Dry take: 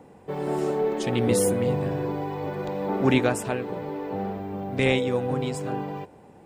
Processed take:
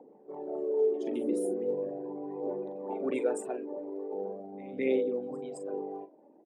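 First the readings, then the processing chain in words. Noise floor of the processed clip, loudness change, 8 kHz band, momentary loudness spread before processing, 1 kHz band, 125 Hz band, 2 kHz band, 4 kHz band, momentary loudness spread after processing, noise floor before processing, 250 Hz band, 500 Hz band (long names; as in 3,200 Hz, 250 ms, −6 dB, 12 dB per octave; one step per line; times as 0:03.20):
−58 dBFS, −7.5 dB, −15.5 dB, 10 LU, −13.0 dB, −25.5 dB, −16.0 dB, below −20 dB, 13 LU, −51 dBFS, −9.0 dB, −5.0 dB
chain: spectral envelope exaggerated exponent 2
double-tracking delay 41 ms −10 dB
phase shifter 0.4 Hz, delay 3.5 ms, feedback 48%
high-pass filter 240 Hz 24 dB per octave
echo ahead of the sound 214 ms −20.5 dB
level −8.5 dB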